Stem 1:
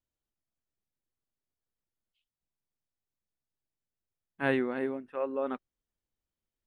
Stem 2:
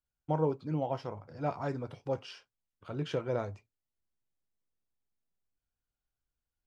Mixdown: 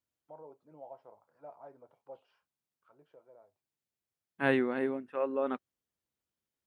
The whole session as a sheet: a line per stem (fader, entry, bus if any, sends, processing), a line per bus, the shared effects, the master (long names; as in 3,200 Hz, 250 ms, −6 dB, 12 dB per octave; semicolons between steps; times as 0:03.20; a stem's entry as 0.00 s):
+0.5 dB, 0.00 s, no send, no processing
−9.5 dB, 0.00 s, no send, notch filter 760 Hz, Q 14; brickwall limiter −24 dBFS, peak gain reduction 6.5 dB; envelope filter 690–1,500 Hz, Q 2.4, down, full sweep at −35 dBFS; automatic ducking −19 dB, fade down 2.00 s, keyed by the first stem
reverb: not used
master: high-pass filter 93 Hz